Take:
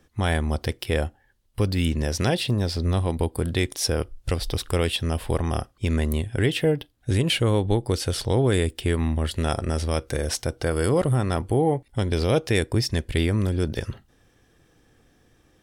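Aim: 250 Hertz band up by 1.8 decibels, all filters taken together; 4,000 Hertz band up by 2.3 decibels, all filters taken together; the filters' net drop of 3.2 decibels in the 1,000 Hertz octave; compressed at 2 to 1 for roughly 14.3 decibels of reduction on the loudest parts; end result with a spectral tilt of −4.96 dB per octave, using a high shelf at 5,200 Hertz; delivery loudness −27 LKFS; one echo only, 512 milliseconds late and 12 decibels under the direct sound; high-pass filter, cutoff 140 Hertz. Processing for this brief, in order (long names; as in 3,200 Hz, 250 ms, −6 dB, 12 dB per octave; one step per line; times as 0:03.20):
high-pass filter 140 Hz
parametric band 250 Hz +3.5 dB
parametric band 1,000 Hz −5 dB
parametric band 4,000 Hz +5 dB
high-shelf EQ 5,200 Hz −3.5 dB
downward compressor 2 to 1, threshold −44 dBFS
single-tap delay 512 ms −12 dB
level +11 dB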